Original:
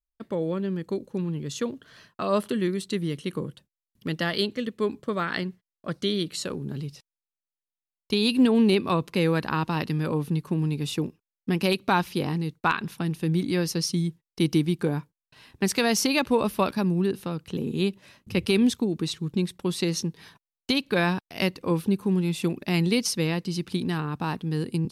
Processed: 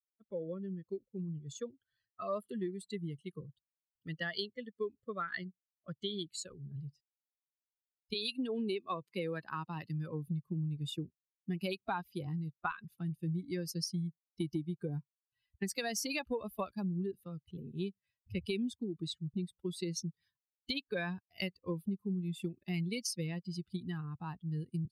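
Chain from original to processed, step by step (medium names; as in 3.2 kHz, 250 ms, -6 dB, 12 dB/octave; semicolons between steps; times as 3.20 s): expander on every frequency bin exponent 2; 8.13–10.26 s: high-pass 450 Hz -> 130 Hz 12 dB/octave; compression 6:1, threshold -31 dBFS, peak gain reduction 11.5 dB; trim -2 dB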